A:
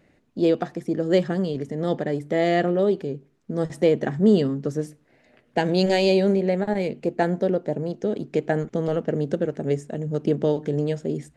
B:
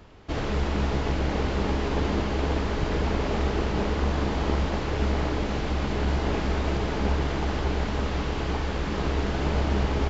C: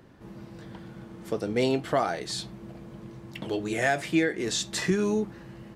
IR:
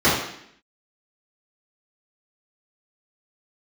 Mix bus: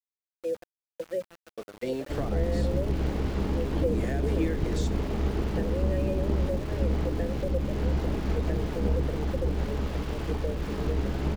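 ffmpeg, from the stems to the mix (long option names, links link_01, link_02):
-filter_complex "[0:a]asplit=3[link_01][link_02][link_03];[link_01]bandpass=frequency=530:width_type=q:width=8,volume=0dB[link_04];[link_02]bandpass=frequency=1840:width_type=q:width=8,volume=-6dB[link_05];[link_03]bandpass=frequency=2480:width_type=q:width=8,volume=-9dB[link_06];[link_04][link_05][link_06]amix=inputs=3:normalize=0,equalizer=frequency=1400:width=0.35:gain=8,volume=-3.5dB,asplit=2[link_07][link_08];[1:a]adelay=1800,volume=-0.5dB[link_09];[2:a]highpass=frequency=360:poles=1,adelay=250,volume=-0.5dB[link_10];[link_08]apad=whole_len=264731[link_11];[link_10][link_11]sidechaingate=range=-33dB:threshold=-49dB:ratio=16:detection=peak[link_12];[link_07][link_09][link_12]amix=inputs=3:normalize=0,agate=range=-33dB:threshold=-24dB:ratio=3:detection=peak,acrossover=split=420[link_13][link_14];[link_14]acompressor=threshold=-38dB:ratio=10[link_15];[link_13][link_15]amix=inputs=2:normalize=0,aeval=exprs='val(0)*gte(abs(val(0)),0.00794)':channel_layout=same"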